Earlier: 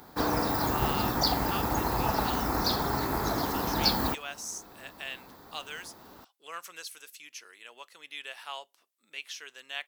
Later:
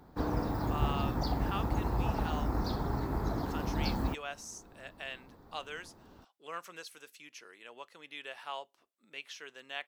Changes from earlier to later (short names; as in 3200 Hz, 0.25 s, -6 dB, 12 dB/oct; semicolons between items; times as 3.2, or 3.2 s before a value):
background -9.0 dB; master: add tilt -3 dB/oct